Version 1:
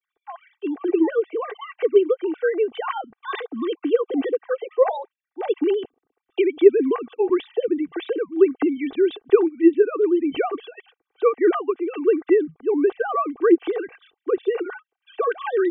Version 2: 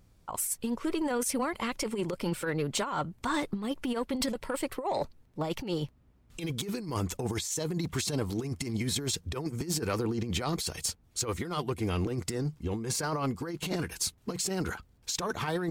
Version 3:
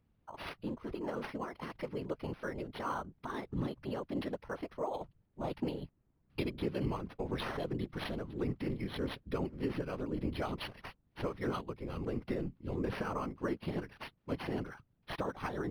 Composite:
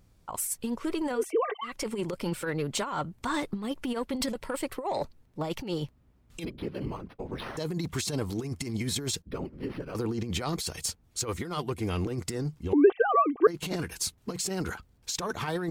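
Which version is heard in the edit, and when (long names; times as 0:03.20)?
2
0:01.21–0:01.73: punch in from 1, crossfade 0.24 s
0:06.45–0:07.57: punch in from 3
0:09.22–0:09.95: punch in from 3
0:12.73–0:13.47: punch in from 1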